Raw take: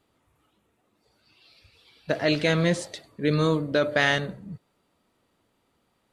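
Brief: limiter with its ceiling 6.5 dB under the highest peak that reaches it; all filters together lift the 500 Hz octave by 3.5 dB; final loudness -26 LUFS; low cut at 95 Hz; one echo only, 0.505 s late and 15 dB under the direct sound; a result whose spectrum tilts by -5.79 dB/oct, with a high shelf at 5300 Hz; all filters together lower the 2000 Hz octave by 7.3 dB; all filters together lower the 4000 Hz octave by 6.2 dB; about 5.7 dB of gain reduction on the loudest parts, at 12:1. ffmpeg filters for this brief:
-af "highpass=95,equalizer=f=500:t=o:g=4.5,equalizer=f=2k:t=o:g=-8.5,equalizer=f=4k:t=o:g=-8,highshelf=f=5.3k:g=9,acompressor=threshold=-21dB:ratio=12,alimiter=limit=-18.5dB:level=0:latency=1,aecho=1:1:505:0.178,volume=4.5dB"

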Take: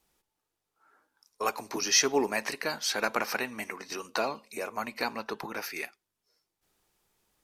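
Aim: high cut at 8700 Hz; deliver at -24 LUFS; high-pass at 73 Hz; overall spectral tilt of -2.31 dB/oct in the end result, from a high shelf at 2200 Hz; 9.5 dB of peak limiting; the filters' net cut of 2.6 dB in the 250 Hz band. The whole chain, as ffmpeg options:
-af "highpass=73,lowpass=8.7k,equalizer=f=250:t=o:g=-3,highshelf=f=2.2k:g=-8.5,volume=14dB,alimiter=limit=-10.5dB:level=0:latency=1"

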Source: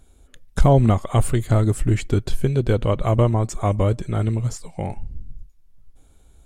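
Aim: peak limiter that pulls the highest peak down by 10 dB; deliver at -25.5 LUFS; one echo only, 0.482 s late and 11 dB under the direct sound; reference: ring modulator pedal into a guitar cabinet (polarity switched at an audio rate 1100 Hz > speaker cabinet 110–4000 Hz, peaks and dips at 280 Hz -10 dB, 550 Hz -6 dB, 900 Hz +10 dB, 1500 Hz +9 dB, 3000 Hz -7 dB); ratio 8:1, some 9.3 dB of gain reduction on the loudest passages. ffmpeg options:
-af "acompressor=threshold=-18dB:ratio=8,alimiter=limit=-18.5dB:level=0:latency=1,aecho=1:1:482:0.282,aeval=exprs='val(0)*sgn(sin(2*PI*1100*n/s))':c=same,highpass=110,equalizer=f=280:t=q:w=4:g=-10,equalizer=f=550:t=q:w=4:g=-6,equalizer=f=900:t=q:w=4:g=10,equalizer=f=1.5k:t=q:w=4:g=9,equalizer=f=3k:t=q:w=4:g=-7,lowpass=f=4k:w=0.5412,lowpass=f=4k:w=1.3066,volume=-3dB"

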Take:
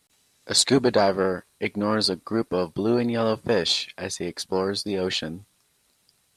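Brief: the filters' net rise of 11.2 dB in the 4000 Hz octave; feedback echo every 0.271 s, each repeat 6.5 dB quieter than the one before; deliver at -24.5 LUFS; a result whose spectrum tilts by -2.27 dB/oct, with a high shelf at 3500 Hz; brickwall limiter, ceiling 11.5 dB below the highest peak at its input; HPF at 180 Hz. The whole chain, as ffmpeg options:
-af "highpass=180,highshelf=f=3.5k:g=7,equalizer=f=4k:t=o:g=8,alimiter=limit=-7dB:level=0:latency=1,aecho=1:1:271|542|813|1084|1355|1626:0.473|0.222|0.105|0.0491|0.0231|0.0109,volume=-4dB"

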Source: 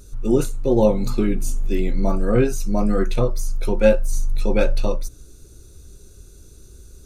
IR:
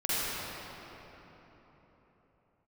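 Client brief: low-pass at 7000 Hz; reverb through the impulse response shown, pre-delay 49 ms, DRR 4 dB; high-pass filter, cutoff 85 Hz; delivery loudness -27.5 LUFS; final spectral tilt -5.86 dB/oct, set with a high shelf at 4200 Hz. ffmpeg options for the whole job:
-filter_complex "[0:a]highpass=85,lowpass=7k,highshelf=f=4.2k:g=3.5,asplit=2[a][b];[1:a]atrim=start_sample=2205,adelay=49[c];[b][c]afir=irnorm=-1:irlink=0,volume=-15dB[d];[a][d]amix=inputs=2:normalize=0,volume=-6.5dB"

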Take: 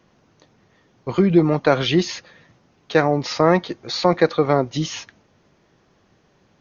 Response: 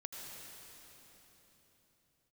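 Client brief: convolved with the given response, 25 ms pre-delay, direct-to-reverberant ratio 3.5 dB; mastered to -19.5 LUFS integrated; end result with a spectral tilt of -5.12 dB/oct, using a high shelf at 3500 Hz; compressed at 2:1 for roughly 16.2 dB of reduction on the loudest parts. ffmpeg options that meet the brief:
-filter_complex "[0:a]highshelf=f=3.5k:g=-8.5,acompressor=threshold=-41dB:ratio=2,asplit=2[a][b];[1:a]atrim=start_sample=2205,adelay=25[c];[b][c]afir=irnorm=-1:irlink=0,volume=-1.5dB[d];[a][d]amix=inputs=2:normalize=0,volume=14.5dB"

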